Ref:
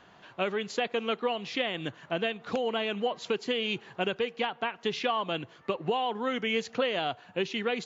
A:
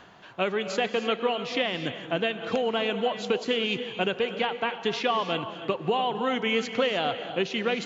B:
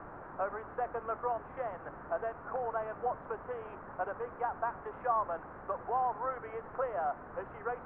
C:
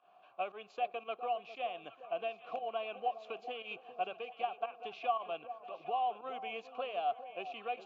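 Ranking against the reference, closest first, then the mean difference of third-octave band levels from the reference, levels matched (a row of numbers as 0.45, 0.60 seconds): A, C, B; 3.5, 7.5, 11.0 decibels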